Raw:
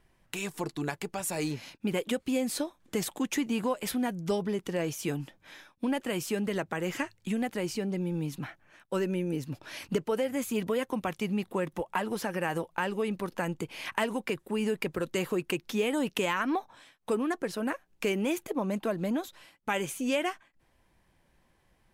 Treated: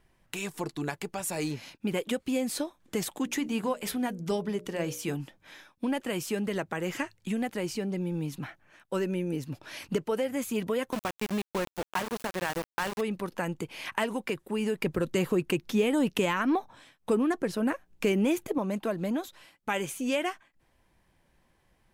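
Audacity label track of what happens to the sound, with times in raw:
3.240000	5.160000	mains-hum notches 60/120/180/240/300/360/420/480/540/600 Hz
10.920000	13.010000	centre clipping without the shift under −30.5 dBFS
14.820000	18.580000	low-shelf EQ 330 Hz +7.5 dB

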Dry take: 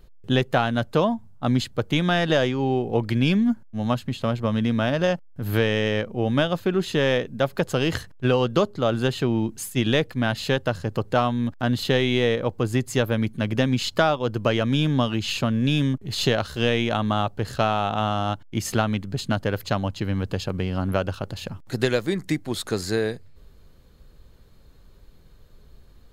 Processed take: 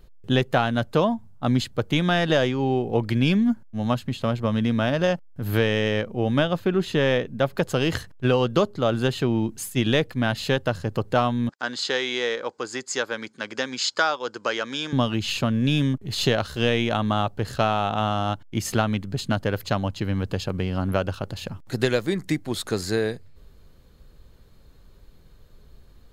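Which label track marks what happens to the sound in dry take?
6.390000	7.570000	bass and treble bass +1 dB, treble −4 dB
11.490000	14.930000	loudspeaker in its box 500–8,200 Hz, peaks and dips at 660 Hz −7 dB, 1,500 Hz +4 dB, 2,800 Hz −4 dB, 4,900 Hz +8 dB, 7,000 Hz +7 dB

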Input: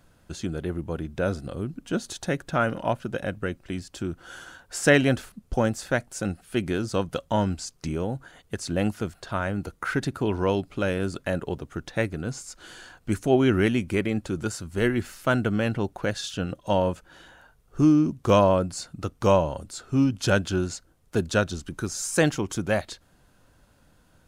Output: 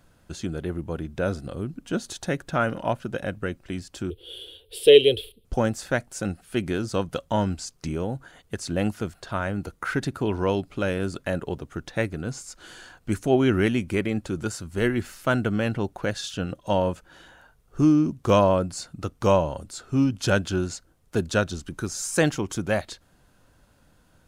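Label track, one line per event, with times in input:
4.100000	5.450000	drawn EQ curve 100 Hz 0 dB, 190 Hz −22 dB, 280 Hz −10 dB, 440 Hz +14 dB, 630 Hz −12 dB, 1,500 Hz −26 dB, 3,300 Hz +15 dB, 6,500 Hz −22 dB, 10,000 Hz +3 dB

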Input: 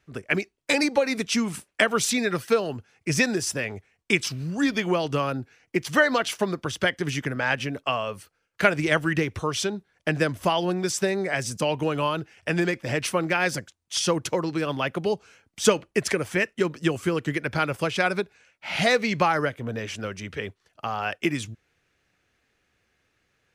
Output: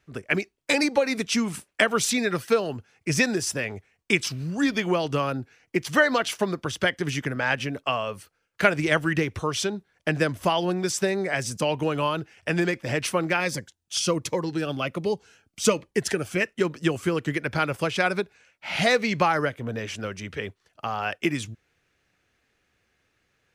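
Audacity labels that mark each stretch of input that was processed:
13.400000	16.410000	phaser whose notches keep moving one way falling 1.3 Hz

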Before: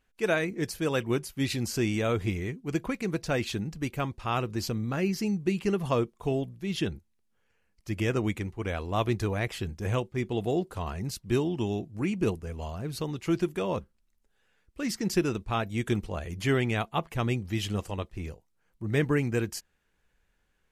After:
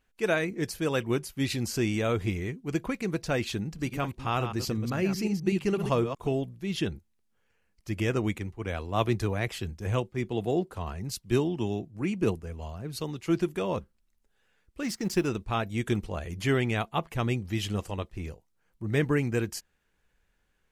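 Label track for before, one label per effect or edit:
3.650000	6.280000	delay that plays each chunk backwards 125 ms, level −8 dB
8.380000	13.410000	multiband upward and downward expander depth 40%
14.830000	15.270000	mu-law and A-law mismatch coded by A

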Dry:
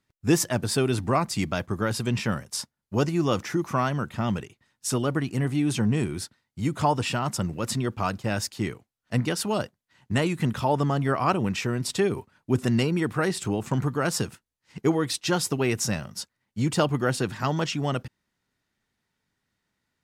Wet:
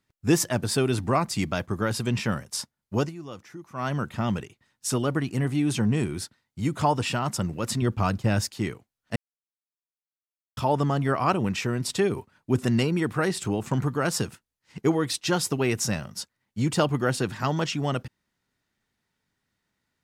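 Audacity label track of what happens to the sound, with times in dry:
2.970000	3.920000	duck −15.5 dB, fades 0.18 s
7.820000	8.460000	low-shelf EQ 210 Hz +8.5 dB
9.160000	10.570000	silence

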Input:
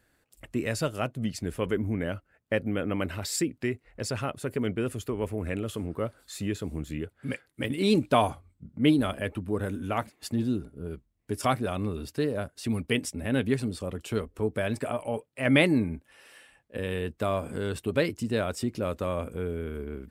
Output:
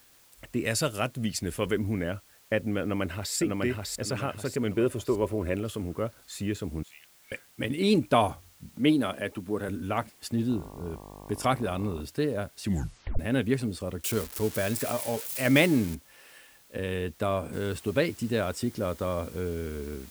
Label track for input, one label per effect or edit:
0.640000	2.000000	high-shelf EQ 2,500 Hz +8 dB
2.810000	3.350000	delay throw 600 ms, feedback 40%, level −2 dB
4.750000	5.560000	hollow resonant body resonances 370/560/990/3,600 Hz, height 9 dB
6.830000	7.320000	four-pole ladder high-pass 1,900 Hz, resonance 30%
8.740000	9.690000	Bessel high-pass filter 170 Hz
10.490000	12.000000	hum with harmonics 50 Hz, harmonics 23, −46 dBFS −2 dB per octave
12.630000	12.630000	tape stop 0.56 s
14.040000	15.950000	spike at every zero crossing of −24.5 dBFS
17.530000	17.530000	noise floor change −59 dB −52 dB
18.650000	19.280000	notch filter 2,600 Hz, Q 8.6

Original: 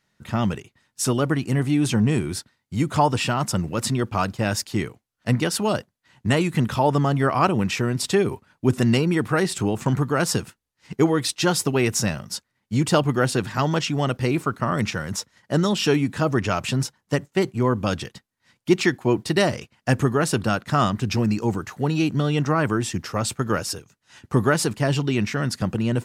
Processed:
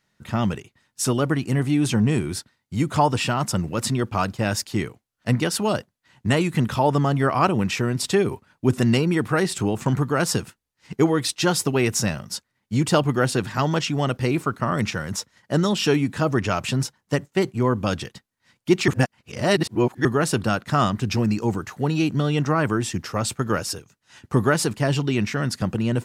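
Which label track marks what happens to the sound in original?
18.880000	20.050000	reverse

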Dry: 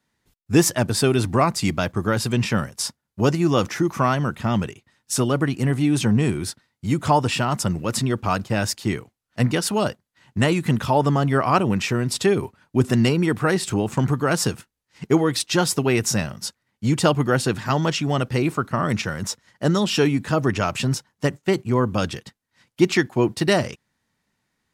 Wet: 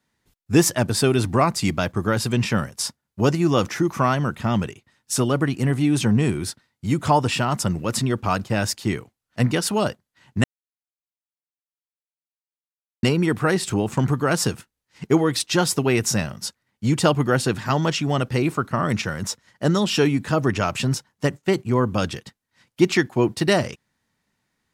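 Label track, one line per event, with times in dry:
10.440000	13.030000	silence

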